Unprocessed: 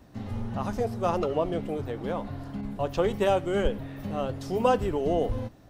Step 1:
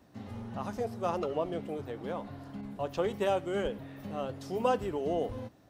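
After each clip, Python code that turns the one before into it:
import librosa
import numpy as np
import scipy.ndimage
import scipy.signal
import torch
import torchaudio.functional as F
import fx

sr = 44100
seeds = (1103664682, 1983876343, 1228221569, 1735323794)

y = fx.highpass(x, sr, hz=140.0, slope=6)
y = F.gain(torch.from_numpy(y), -5.0).numpy()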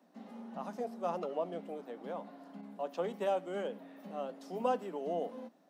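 y = scipy.signal.sosfilt(scipy.signal.cheby1(6, 6, 170.0, 'highpass', fs=sr, output='sos'), x)
y = F.gain(torch.from_numpy(y), -2.0).numpy()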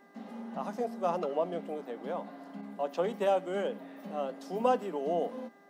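y = fx.dmg_buzz(x, sr, base_hz=400.0, harmonics=5, level_db=-67.0, tilt_db=-1, odd_only=False)
y = F.gain(torch.from_numpy(y), 5.0).numpy()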